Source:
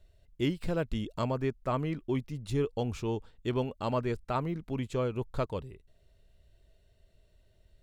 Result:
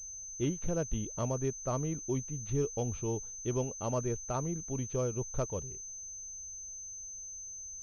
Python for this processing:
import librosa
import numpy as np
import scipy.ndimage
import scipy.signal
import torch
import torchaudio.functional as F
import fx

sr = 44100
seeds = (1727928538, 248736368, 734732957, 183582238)

y = fx.graphic_eq_10(x, sr, hz=(250, 1000, 2000), db=(-4, -4, -9))
y = fx.pwm(y, sr, carrier_hz=6200.0)